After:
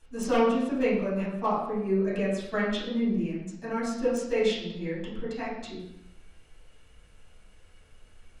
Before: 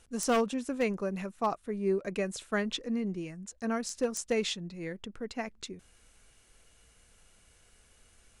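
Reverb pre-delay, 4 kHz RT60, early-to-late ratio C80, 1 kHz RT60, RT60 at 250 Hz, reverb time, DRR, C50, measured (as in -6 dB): 3 ms, 0.70 s, 5.0 dB, 0.80 s, 1.0 s, 0.80 s, -10.5 dB, 1.5 dB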